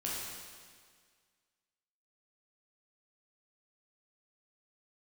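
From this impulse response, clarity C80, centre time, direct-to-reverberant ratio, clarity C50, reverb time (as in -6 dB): 0.5 dB, 114 ms, -6.0 dB, -1.5 dB, 1.8 s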